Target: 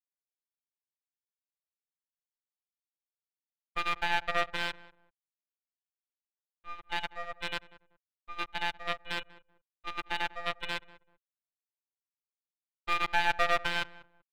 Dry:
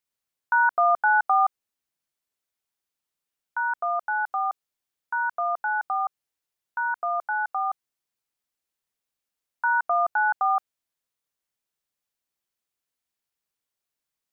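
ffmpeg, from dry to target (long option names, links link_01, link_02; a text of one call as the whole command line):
ffmpeg -i in.wav -filter_complex "[0:a]areverse,agate=range=-29dB:threshold=-25dB:ratio=16:detection=peak,tiltshelf=frequency=900:gain=-9.5,aecho=1:1:6.1:0.64,tremolo=f=8.2:d=0.78,aresample=8000,acrusher=bits=5:dc=4:mix=0:aa=0.000001,aresample=44100,afftfilt=real='hypot(re,im)*cos(PI*b)':imag='0':win_size=1024:overlap=0.75,aeval=exprs='max(val(0),0)':channel_layout=same,asplit=2[link_01][link_02];[link_02]adelay=192,lowpass=frequency=1200:poles=1,volume=-17dB,asplit=2[link_03][link_04];[link_04]adelay=192,lowpass=frequency=1200:poles=1,volume=0.26[link_05];[link_01][link_03][link_05]amix=inputs=3:normalize=0,adynamicequalizer=threshold=0.00794:dfrequency=1600:dqfactor=0.7:tfrequency=1600:tqfactor=0.7:attack=5:release=100:ratio=0.375:range=2:mode=boostabove:tftype=highshelf,volume=-1.5dB" out.wav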